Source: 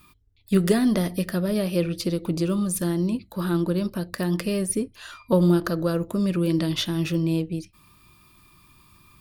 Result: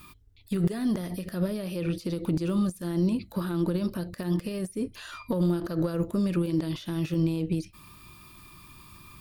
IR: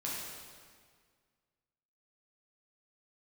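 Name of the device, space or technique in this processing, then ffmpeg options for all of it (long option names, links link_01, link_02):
de-esser from a sidechain: -filter_complex "[0:a]asplit=2[link_01][link_02];[link_02]highpass=frequency=6600:poles=1,apad=whole_len=406126[link_03];[link_01][link_03]sidechaincompress=threshold=-50dB:ratio=12:attack=1.6:release=56,volume=5dB"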